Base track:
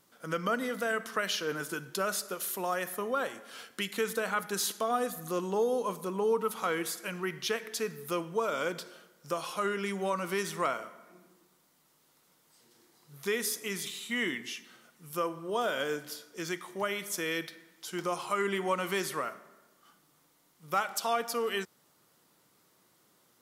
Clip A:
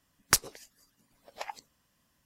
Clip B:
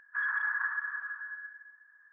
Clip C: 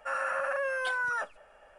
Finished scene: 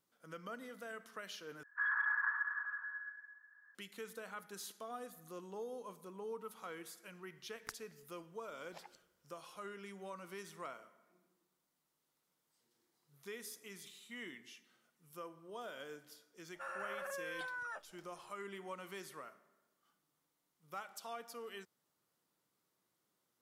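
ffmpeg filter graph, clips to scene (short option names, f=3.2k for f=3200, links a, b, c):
-filter_complex "[0:a]volume=-16.5dB[a];[2:a]equalizer=f=870:t=o:w=0.77:g=2[b];[1:a]acompressor=threshold=-41dB:ratio=6:attack=23:release=469:knee=1:detection=peak[c];[a]asplit=2[d][e];[d]atrim=end=1.634[f];[b]atrim=end=2.12,asetpts=PTS-STARTPTS,volume=-4dB[g];[e]atrim=start=3.746[h];[c]atrim=end=2.25,asetpts=PTS-STARTPTS,volume=-12dB,afade=t=in:d=0.004:c=hsin,afade=t=out:st=2.246:d=0.004:c=hsin,adelay=7360[i];[3:a]atrim=end=1.78,asetpts=PTS-STARTPTS,volume=-13dB,afade=t=in:d=0.004:c=hsin,afade=t=out:st=1.776:d=0.004:c=hsin,adelay=16540[j];[f][g]acrossfade=d=0.004:c1=hsin:c2=hsin[k];[k][h]acrossfade=d=0.004:c1=hsin:c2=hsin[l];[l][i][j]amix=inputs=3:normalize=0"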